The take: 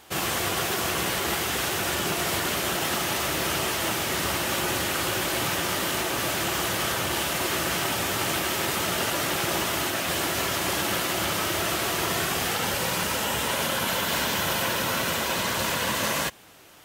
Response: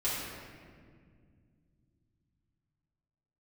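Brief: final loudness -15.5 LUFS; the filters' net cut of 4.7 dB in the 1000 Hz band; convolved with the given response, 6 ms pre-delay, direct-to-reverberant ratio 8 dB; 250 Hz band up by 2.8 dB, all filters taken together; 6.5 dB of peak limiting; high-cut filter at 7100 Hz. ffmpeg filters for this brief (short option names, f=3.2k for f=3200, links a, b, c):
-filter_complex "[0:a]lowpass=7.1k,equalizer=f=250:t=o:g=4.5,equalizer=f=1k:t=o:g=-6.5,alimiter=limit=-20.5dB:level=0:latency=1,asplit=2[a][b];[1:a]atrim=start_sample=2205,adelay=6[c];[b][c]afir=irnorm=-1:irlink=0,volume=-15.5dB[d];[a][d]amix=inputs=2:normalize=0,volume=13dB"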